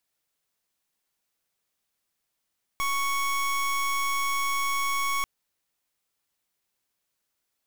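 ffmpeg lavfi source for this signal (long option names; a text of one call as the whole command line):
ffmpeg -f lavfi -i "aevalsrc='0.0473*(2*lt(mod(1110*t,1),0.26)-1)':duration=2.44:sample_rate=44100" out.wav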